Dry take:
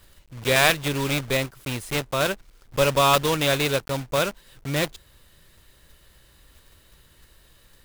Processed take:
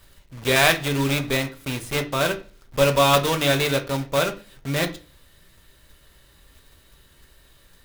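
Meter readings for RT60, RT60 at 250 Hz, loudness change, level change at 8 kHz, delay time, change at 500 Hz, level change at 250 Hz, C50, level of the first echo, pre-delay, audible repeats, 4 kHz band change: 0.40 s, 0.50 s, +1.5 dB, +0.5 dB, no echo audible, +1.5 dB, +3.0 dB, 15.0 dB, no echo audible, 3 ms, no echo audible, +1.0 dB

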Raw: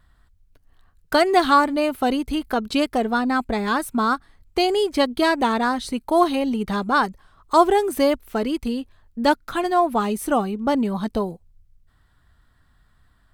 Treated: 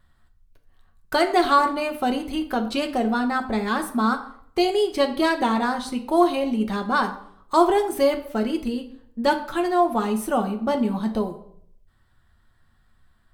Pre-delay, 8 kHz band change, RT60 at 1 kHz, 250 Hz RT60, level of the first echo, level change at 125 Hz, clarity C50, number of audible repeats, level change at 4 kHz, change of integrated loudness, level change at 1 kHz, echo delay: 5 ms, −2.5 dB, 0.60 s, 0.70 s, no echo audible, can't be measured, 11.5 dB, no echo audible, −2.5 dB, −1.5 dB, −2.0 dB, no echo audible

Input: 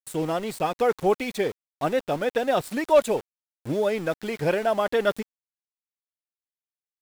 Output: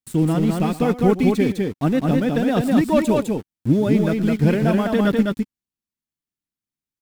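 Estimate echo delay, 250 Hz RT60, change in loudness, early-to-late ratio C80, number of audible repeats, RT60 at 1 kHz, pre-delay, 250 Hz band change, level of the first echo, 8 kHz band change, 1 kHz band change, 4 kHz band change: 114 ms, no reverb audible, +6.0 dB, no reverb audible, 2, no reverb audible, no reverb audible, +14.5 dB, −16.5 dB, +2.0 dB, 0.0 dB, +1.5 dB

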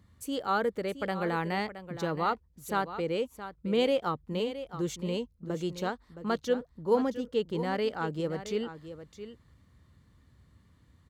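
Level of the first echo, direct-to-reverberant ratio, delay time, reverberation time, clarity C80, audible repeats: −12.0 dB, no reverb audible, 669 ms, no reverb audible, no reverb audible, 1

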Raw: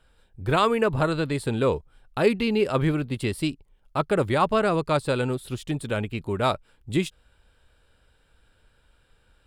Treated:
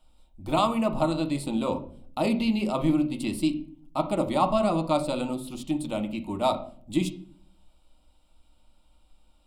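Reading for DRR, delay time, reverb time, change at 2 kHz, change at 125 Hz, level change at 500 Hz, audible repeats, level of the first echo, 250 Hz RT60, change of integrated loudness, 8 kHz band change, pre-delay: 5.0 dB, no echo audible, 0.50 s, −9.0 dB, −6.5 dB, −4.0 dB, no echo audible, no echo audible, 0.80 s, −2.0 dB, −0.5 dB, 6 ms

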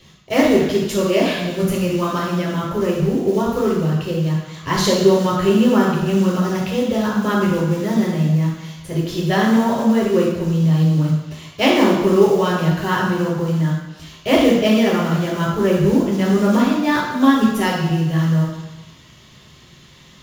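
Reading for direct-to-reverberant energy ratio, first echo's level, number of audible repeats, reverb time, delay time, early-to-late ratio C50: −5.5 dB, no echo audible, no echo audible, 1.0 s, no echo audible, 1.0 dB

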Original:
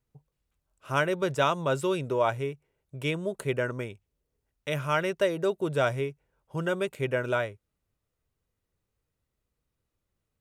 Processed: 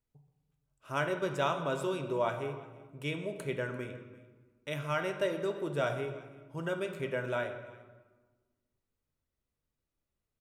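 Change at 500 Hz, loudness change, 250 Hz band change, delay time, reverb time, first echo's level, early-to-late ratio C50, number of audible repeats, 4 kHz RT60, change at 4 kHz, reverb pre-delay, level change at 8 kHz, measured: −5.5 dB, −6.0 dB, −5.5 dB, 344 ms, 1.4 s, −21.0 dB, 8.0 dB, 1, 0.95 s, −6.0 dB, 3 ms, −6.5 dB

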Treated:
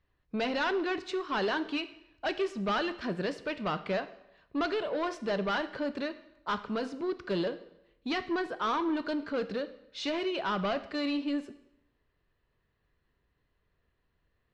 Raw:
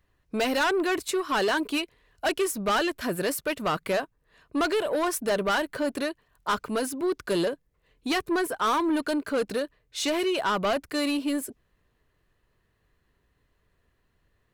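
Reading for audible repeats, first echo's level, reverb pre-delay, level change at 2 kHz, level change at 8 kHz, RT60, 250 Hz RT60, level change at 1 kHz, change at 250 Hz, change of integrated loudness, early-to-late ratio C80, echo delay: no echo audible, no echo audible, 11 ms, −5.5 dB, −19.5 dB, 0.85 s, 0.85 s, −5.5 dB, −4.5 dB, −5.5 dB, 16.5 dB, no echo audible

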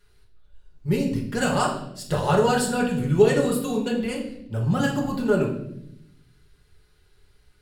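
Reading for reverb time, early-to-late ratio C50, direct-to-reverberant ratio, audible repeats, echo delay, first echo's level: 0.75 s, 6.5 dB, −2.0 dB, no echo audible, no echo audible, no echo audible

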